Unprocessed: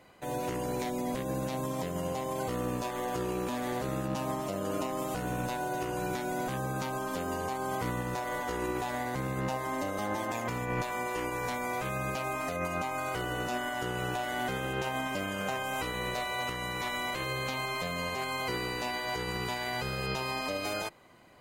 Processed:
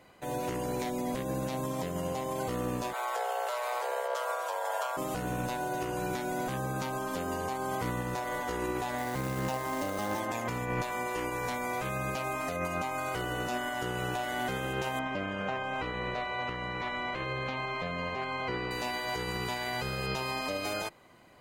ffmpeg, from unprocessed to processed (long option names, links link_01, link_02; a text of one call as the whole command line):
ffmpeg -i in.wav -filter_complex "[0:a]asplit=3[link_01][link_02][link_03];[link_01]afade=type=out:start_time=2.92:duration=0.02[link_04];[link_02]afreqshift=360,afade=type=in:start_time=2.92:duration=0.02,afade=type=out:start_time=4.96:duration=0.02[link_05];[link_03]afade=type=in:start_time=4.96:duration=0.02[link_06];[link_04][link_05][link_06]amix=inputs=3:normalize=0,asettb=1/sr,asplit=3[link_07][link_08][link_09];[link_07]atrim=end=8.984[link_10];[link_08]atrim=start=8.98:end=10.2,asetpts=PTS-STARTPTS,afade=type=in:duration=0.004:curve=qsin,afade=type=out:start_time=1.216:duration=0.004:curve=qsin,acrusher=bits=3:mode=log:mix=0:aa=0.000001[link_11];[link_09]atrim=start=10.196[link_12];[link_10][link_11]acrossfade=duration=0.004:curve1=hsin:curve2=qsin[link_13];[link_13][link_12]acrossfade=duration=0.004:curve1=qsin:curve2=hsin,asettb=1/sr,asplit=3[link_14][link_15][link_16];[link_14]atrim=end=14.994[link_17];[link_15]atrim=start=14.99:end=18.71,asetpts=PTS-STARTPTS,afade=type=in:duration=0.004:curve=qsin,afade=type=out:start_time=3.716:duration=0.004:curve=qsin,lowpass=2900[link_18];[link_16]atrim=start=18.706[link_19];[link_17][link_18]acrossfade=duration=0.004:curve1=hsin:curve2=qsin[link_20];[link_20][link_19]acrossfade=duration=0.004:curve1=qsin:curve2=hsin" out.wav